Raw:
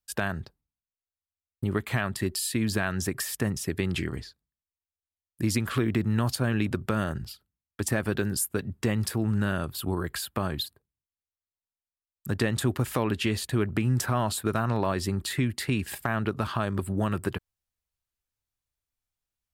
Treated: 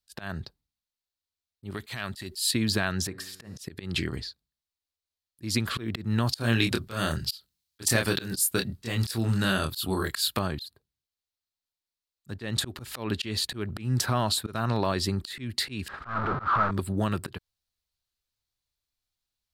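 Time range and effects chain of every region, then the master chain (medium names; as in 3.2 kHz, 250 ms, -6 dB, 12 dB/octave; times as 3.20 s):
1.70–2.51 s: compression 4:1, threshold -29 dBFS + treble shelf 2.1 kHz +9.5 dB
3.07–3.58 s: treble shelf 5.9 kHz -7.5 dB + feedback comb 93 Hz, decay 1.5 s + de-hum 55.06 Hz, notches 30
6.38–10.39 s: treble shelf 2.5 kHz +10.5 dB + doubling 26 ms -4.5 dB
15.88–16.71 s: one-bit comparator + resonant low-pass 1.3 kHz, resonance Q 5.9 + expander -26 dBFS
whole clip: peaking EQ 4.2 kHz +10 dB 0.73 oct; slow attack 177 ms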